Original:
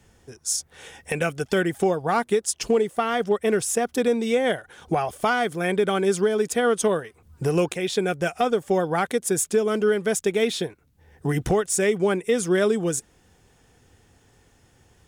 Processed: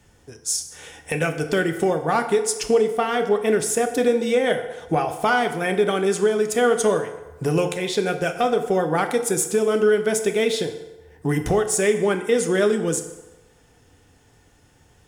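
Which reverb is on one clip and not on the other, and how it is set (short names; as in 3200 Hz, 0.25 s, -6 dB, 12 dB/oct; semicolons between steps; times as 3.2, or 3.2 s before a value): FDN reverb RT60 1.1 s, low-frequency decay 0.7×, high-frequency decay 0.7×, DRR 6 dB; gain +1 dB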